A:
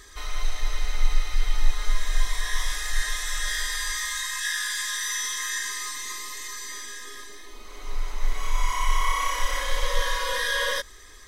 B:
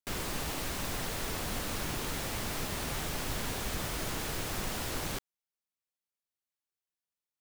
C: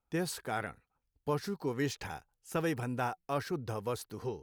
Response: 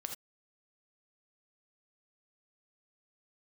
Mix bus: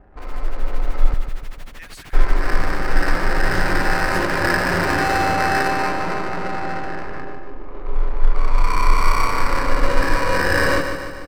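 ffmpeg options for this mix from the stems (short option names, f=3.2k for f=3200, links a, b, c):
-filter_complex "[0:a]acrusher=samples=13:mix=1:aa=0.000001,adynamicsmooth=sensitivity=5.5:basefreq=530,volume=2dB,asplit=3[a][b][c];[a]atrim=end=1.14,asetpts=PTS-STARTPTS,afade=t=out:st=1.136:d=0.004:c=hsin[d];[b]atrim=start=1.14:end=2.13,asetpts=PTS-STARTPTS,volume=0[e];[c]atrim=start=2.13,asetpts=PTS-STARTPTS,afade=t=in:d=0.004:c=hsin[f];[d][e][f]concat=n=3:v=0:a=1,asplit=2[g][h];[h]volume=-8dB[i];[1:a]equalizer=f=2.1k:w=0.76:g=7.5,tremolo=f=13:d=0.98,adelay=150,volume=-9.5dB[j];[2:a]acompressor=threshold=-46dB:ratio=2,highpass=f=2k:t=q:w=2.6,adelay=1650,volume=1dB[k];[i]aecho=0:1:148|296|444|592|740|888|1036|1184:1|0.53|0.281|0.149|0.0789|0.0418|0.0222|0.0117[l];[g][j][k][l]amix=inputs=4:normalize=0,highshelf=f=4.1k:g=-5.5,dynaudnorm=f=120:g=11:m=9.5dB"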